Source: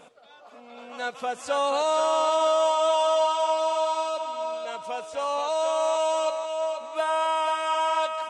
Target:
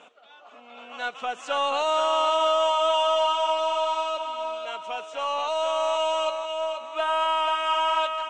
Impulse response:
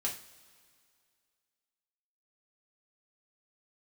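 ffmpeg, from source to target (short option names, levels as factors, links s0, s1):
-af "highpass=280,equalizer=f=510:t=q:w=4:g=-5,equalizer=f=1300:t=q:w=4:g=3,equalizer=f=2900:t=q:w=4:g=8,equalizer=f=4800:t=q:w=4:g=-9,lowpass=f=7000:w=0.5412,lowpass=f=7000:w=1.3066,aeval=exprs='0.251*(cos(1*acos(clip(val(0)/0.251,-1,1)))-cos(1*PI/2))+0.002*(cos(8*acos(clip(val(0)/0.251,-1,1)))-cos(8*PI/2))':c=same"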